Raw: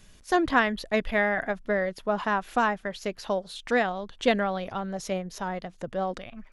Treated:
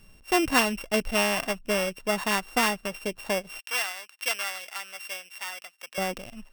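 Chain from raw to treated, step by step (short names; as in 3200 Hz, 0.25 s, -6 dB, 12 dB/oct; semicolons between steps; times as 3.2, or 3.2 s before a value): sample sorter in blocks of 16 samples; 3.59–5.98 HPF 1300 Hz 12 dB/oct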